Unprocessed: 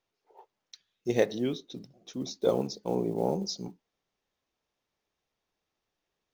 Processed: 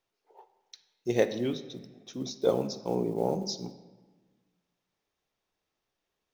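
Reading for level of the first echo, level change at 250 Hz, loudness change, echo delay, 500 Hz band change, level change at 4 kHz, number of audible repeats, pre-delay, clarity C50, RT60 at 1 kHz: no echo, -0.5 dB, +0.5 dB, no echo, +0.5 dB, 0.0 dB, no echo, 7 ms, 13.0 dB, 1.4 s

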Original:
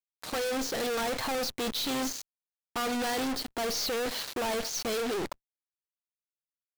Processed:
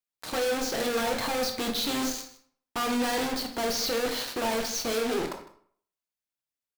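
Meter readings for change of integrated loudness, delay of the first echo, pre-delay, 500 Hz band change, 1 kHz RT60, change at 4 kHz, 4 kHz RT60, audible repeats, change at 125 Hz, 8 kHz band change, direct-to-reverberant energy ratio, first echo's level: +2.5 dB, 155 ms, 16 ms, +3.0 dB, 0.60 s, +2.5 dB, 0.45 s, 1, +2.5 dB, +2.0 dB, 3.5 dB, -17.5 dB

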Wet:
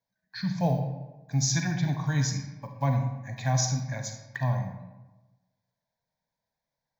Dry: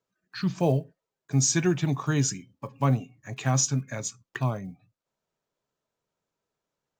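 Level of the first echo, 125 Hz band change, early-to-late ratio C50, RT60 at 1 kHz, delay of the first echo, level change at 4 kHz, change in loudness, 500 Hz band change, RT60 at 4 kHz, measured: no echo, 0.0 dB, 6.0 dB, 1.1 s, no echo, -0.5 dB, -2.0 dB, -5.0 dB, 0.65 s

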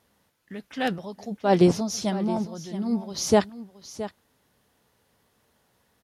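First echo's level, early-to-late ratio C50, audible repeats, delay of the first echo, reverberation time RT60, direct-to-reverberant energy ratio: -14.0 dB, no reverb, 1, 670 ms, no reverb, no reverb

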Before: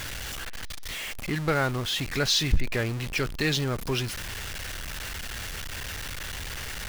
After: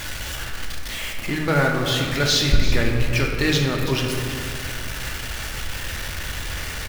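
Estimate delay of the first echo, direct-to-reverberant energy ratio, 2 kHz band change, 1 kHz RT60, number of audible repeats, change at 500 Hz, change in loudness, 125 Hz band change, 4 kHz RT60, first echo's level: 333 ms, 0.0 dB, +6.5 dB, 2.1 s, 1, +6.5 dB, +6.0 dB, +7.0 dB, 1.2 s, -13.0 dB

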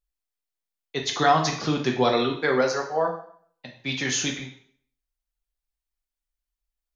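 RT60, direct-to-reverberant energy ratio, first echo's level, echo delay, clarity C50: 0.55 s, 0.5 dB, no echo, no echo, 7.5 dB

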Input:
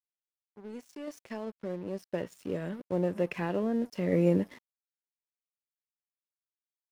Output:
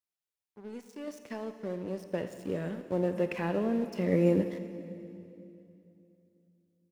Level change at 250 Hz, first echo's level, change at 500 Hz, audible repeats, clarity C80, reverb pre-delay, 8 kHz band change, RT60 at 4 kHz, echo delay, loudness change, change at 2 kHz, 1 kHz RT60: +0.5 dB, -16.0 dB, +0.5 dB, 1, 10.0 dB, 22 ms, no reading, 2.6 s, 84 ms, 0.0 dB, +0.5 dB, 2.6 s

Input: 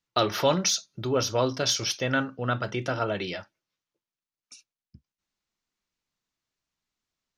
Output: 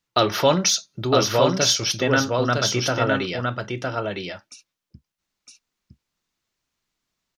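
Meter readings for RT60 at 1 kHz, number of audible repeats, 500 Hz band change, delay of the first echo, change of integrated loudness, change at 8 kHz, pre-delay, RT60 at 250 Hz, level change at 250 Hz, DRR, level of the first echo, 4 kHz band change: no reverb, 1, +6.5 dB, 960 ms, +5.5 dB, +6.5 dB, no reverb, no reverb, +6.5 dB, no reverb, -3.5 dB, +6.5 dB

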